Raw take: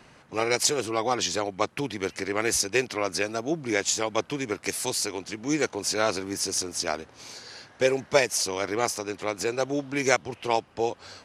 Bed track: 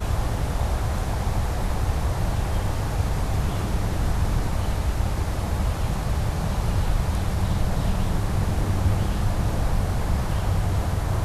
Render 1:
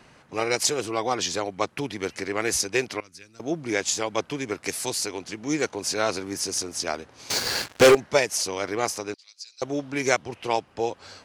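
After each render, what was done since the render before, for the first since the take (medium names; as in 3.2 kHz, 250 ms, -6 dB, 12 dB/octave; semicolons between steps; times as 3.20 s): 3.00–3.40 s: amplifier tone stack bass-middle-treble 6-0-2; 7.30–7.95 s: waveshaping leveller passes 5; 9.14–9.62 s: ladder band-pass 5 kHz, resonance 70%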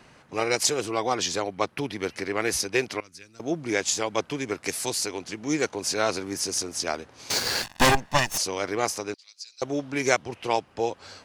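1.42–2.83 s: peaking EQ 7.2 kHz -6 dB 0.46 oct; 7.63–8.38 s: comb filter that takes the minimum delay 1.1 ms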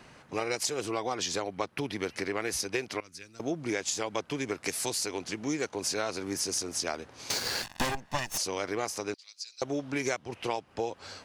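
compression 5:1, threshold -28 dBFS, peak gain reduction 13.5 dB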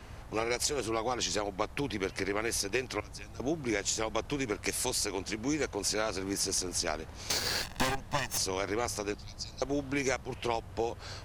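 add bed track -24 dB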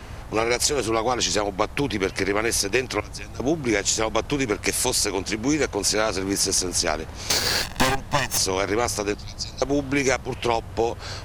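trim +9.5 dB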